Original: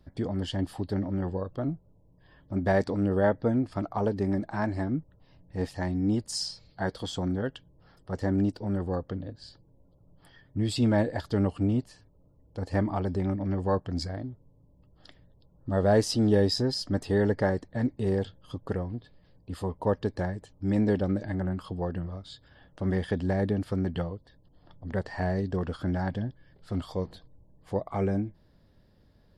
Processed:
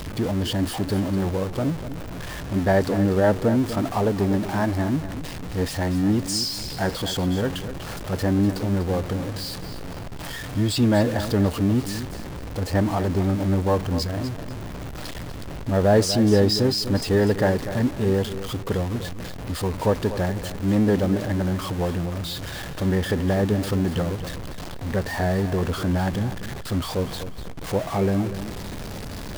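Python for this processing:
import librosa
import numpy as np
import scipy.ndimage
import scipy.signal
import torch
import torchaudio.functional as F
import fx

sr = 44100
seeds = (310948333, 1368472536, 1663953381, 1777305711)

y = x + 0.5 * 10.0 ** (-32.0 / 20.0) * np.sign(x)
y = fx.echo_feedback(y, sr, ms=245, feedback_pct=28, wet_db=-11.5)
y = F.gain(torch.from_numpy(y), 4.0).numpy()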